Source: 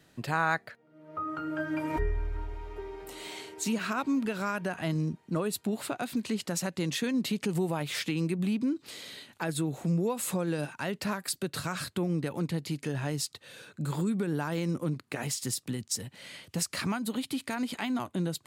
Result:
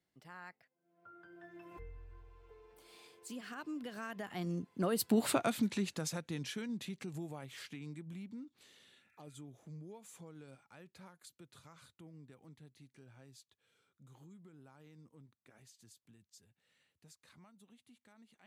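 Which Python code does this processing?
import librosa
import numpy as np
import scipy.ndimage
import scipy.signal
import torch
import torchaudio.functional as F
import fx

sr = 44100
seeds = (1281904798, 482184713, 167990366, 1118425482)

y = fx.doppler_pass(x, sr, speed_mps=34, closest_m=8.3, pass_at_s=5.28)
y = fx.spec_repair(y, sr, seeds[0], start_s=8.98, length_s=0.35, low_hz=1300.0, high_hz=2700.0, source='both')
y = y * 10.0 ** (3.0 / 20.0)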